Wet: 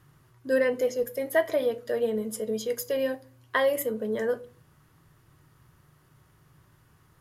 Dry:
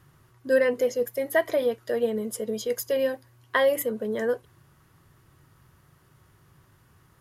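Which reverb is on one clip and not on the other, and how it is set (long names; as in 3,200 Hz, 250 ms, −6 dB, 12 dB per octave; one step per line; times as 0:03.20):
rectangular room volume 220 cubic metres, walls furnished, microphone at 0.46 metres
level −2 dB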